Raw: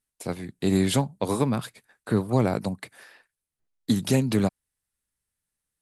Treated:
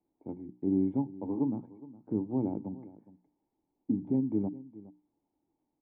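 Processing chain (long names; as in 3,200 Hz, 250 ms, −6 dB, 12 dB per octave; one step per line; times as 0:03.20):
noise gate −48 dBFS, range −11 dB
low-pass filter 3,000 Hz
mains-hum notches 60/120/180/240/300/360 Hz
in parallel at −8.5 dB: bit-depth reduction 8 bits, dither triangular
on the sum: formant resonators in series u
on a send: single-tap delay 414 ms −18.5 dB
on the sum: level −2 dB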